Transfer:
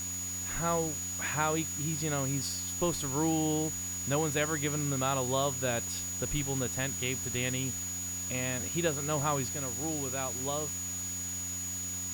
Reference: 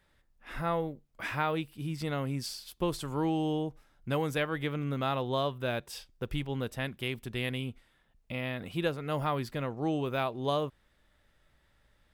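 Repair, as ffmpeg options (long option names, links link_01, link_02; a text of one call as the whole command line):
ffmpeg -i in.wav -af "bandreject=frequency=90:width_type=h:width=4,bandreject=frequency=180:width_type=h:width=4,bandreject=frequency=270:width_type=h:width=4,bandreject=frequency=6800:width=30,afwtdn=0.0056,asetnsamples=nb_out_samples=441:pad=0,asendcmd='9.52 volume volume 6dB',volume=0dB" out.wav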